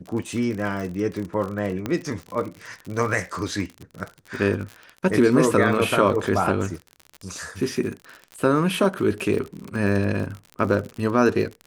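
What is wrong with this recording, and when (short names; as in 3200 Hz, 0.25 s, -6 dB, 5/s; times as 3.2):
crackle 50/s -29 dBFS
1.86 pop -13 dBFS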